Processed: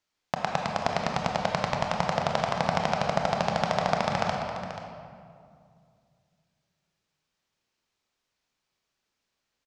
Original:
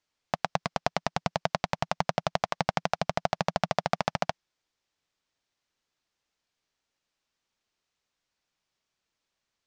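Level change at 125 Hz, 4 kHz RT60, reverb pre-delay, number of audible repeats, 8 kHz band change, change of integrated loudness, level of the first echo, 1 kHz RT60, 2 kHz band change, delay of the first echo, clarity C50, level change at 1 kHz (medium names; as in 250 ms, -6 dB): +3.0 dB, 1.5 s, 22 ms, 1, +1.5 dB, +2.5 dB, -11.5 dB, 2.1 s, +2.5 dB, 484 ms, 1.5 dB, +3.0 dB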